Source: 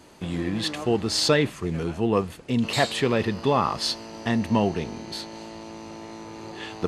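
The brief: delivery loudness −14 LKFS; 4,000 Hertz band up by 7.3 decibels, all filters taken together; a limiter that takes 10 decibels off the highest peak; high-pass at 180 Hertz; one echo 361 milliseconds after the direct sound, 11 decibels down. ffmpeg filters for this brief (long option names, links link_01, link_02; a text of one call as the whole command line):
ffmpeg -i in.wav -af "highpass=180,equalizer=frequency=4000:width_type=o:gain=8.5,alimiter=limit=-15.5dB:level=0:latency=1,aecho=1:1:361:0.282,volume=12.5dB" out.wav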